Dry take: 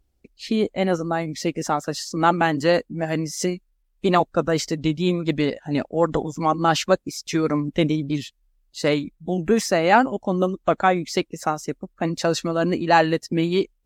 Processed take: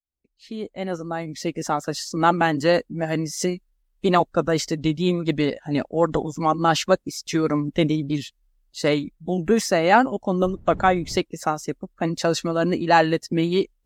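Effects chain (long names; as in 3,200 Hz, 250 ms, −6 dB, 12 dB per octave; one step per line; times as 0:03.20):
fade in at the beginning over 1.92 s
0:10.41–0:11.17: wind on the microphone 120 Hz −24 dBFS
notch filter 2,400 Hz, Q 23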